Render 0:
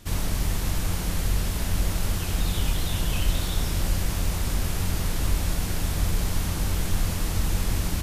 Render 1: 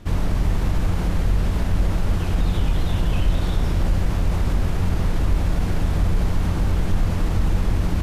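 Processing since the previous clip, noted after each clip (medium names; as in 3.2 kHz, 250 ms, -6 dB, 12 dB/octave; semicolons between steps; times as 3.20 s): low-pass 1.2 kHz 6 dB/octave; in parallel at +3 dB: peak limiter -21.5 dBFS, peak gain reduction 10 dB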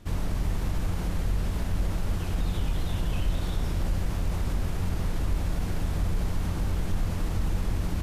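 treble shelf 5.7 kHz +6.5 dB; trim -7.5 dB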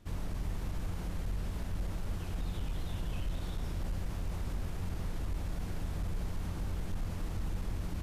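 hard clipper -20 dBFS, distortion -24 dB; trim -8.5 dB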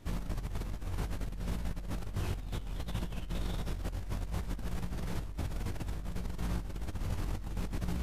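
chorus 0.63 Hz, delay 17 ms, depth 2.7 ms; compressor with a negative ratio -40 dBFS, ratio -0.5; trim +5.5 dB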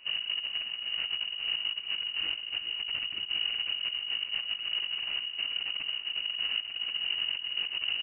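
on a send: delay 404 ms -10 dB; on the sum: frequency inversion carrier 2.9 kHz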